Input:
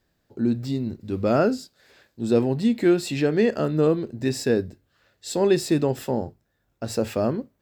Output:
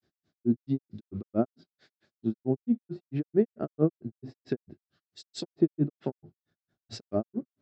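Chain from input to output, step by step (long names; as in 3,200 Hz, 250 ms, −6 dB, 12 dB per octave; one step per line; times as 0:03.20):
loudspeaker in its box 110–6,000 Hz, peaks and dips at 160 Hz +4 dB, 350 Hz +4 dB, 500 Hz −8 dB, 950 Hz −9 dB, 1,800 Hz −5 dB, 2,600 Hz −5 dB
treble cut that deepens with the level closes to 930 Hz, closed at −20.5 dBFS
granular cloud 123 ms, grains 4.5 per second, pitch spread up and down by 0 semitones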